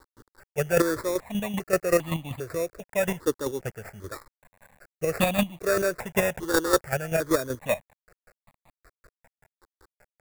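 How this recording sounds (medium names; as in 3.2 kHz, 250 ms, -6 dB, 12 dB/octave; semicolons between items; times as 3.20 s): aliases and images of a low sample rate 3.1 kHz, jitter 0%; chopped level 5.2 Hz, depth 60%, duty 25%; a quantiser's noise floor 10-bit, dither none; notches that jump at a steady rate 2.5 Hz 670–1500 Hz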